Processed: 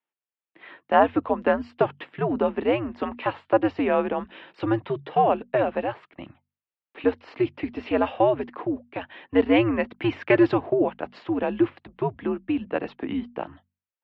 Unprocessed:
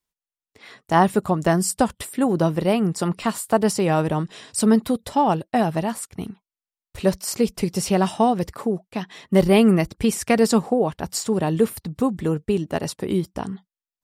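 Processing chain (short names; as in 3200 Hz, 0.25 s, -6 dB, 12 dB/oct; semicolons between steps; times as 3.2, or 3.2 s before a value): 9.84–10.54 sample leveller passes 1; notches 50/100/150/200/250/300/350 Hz; mistuned SSB -110 Hz 350–3100 Hz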